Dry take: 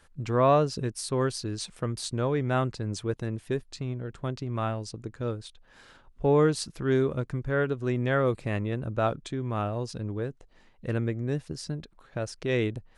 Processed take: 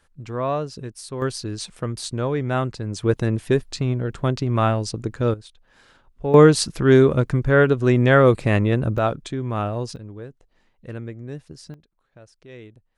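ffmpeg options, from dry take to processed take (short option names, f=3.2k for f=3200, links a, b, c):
-af "asetnsamples=n=441:p=0,asendcmd='1.22 volume volume 3.5dB;3.03 volume volume 10.5dB;5.34 volume volume -0.5dB;6.34 volume volume 11dB;8.98 volume volume 5dB;9.96 volume volume -4.5dB;11.74 volume volume -15dB',volume=-3dB"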